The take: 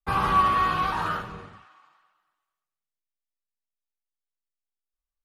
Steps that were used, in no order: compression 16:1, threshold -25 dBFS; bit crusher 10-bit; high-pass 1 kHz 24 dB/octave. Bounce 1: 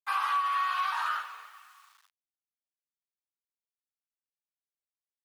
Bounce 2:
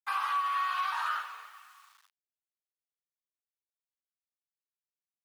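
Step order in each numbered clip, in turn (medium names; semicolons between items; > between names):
bit crusher > high-pass > compression; compression > bit crusher > high-pass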